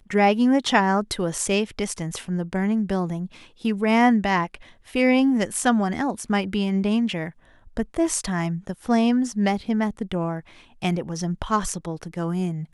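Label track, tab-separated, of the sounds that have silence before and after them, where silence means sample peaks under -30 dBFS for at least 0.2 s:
3.650000	4.550000	sound
4.950000	7.290000	sound
7.770000	10.400000	sound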